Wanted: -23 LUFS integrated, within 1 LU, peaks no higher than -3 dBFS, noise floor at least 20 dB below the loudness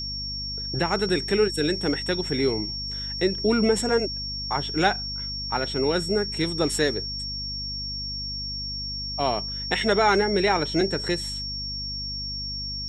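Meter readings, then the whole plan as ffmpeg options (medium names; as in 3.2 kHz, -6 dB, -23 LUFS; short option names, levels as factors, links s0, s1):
hum 50 Hz; highest harmonic 250 Hz; hum level -35 dBFS; steady tone 5.5 kHz; tone level -30 dBFS; loudness -25.0 LUFS; peak level -6.5 dBFS; loudness target -23.0 LUFS
-> -af "bandreject=f=50:t=h:w=4,bandreject=f=100:t=h:w=4,bandreject=f=150:t=h:w=4,bandreject=f=200:t=h:w=4,bandreject=f=250:t=h:w=4"
-af "bandreject=f=5500:w=30"
-af "volume=1.26"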